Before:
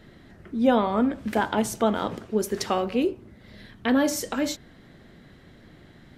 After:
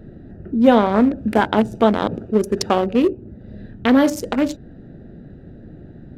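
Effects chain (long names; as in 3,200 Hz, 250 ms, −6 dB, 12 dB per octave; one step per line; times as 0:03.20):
adaptive Wiener filter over 41 samples
in parallel at −1.5 dB: downward compressor, threshold −36 dBFS, peak gain reduction 19.5 dB
on the sum: level +7 dB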